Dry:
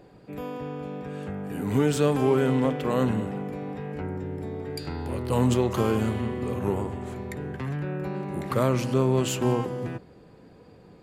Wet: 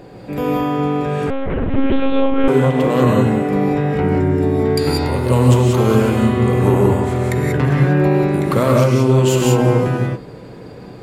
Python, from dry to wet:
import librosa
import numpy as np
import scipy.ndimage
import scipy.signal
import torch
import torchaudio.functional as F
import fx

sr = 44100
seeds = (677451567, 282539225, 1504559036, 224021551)

y = fx.rider(x, sr, range_db=4, speed_s=0.5)
y = fx.rev_gated(y, sr, seeds[0], gate_ms=210, shape='rising', drr_db=-1.0)
y = fx.lpc_monotone(y, sr, seeds[1], pitch_hz=270.0, order=8, at=(1.3, 2.48))
y = y * librosa.db_to_amplitude(8.5)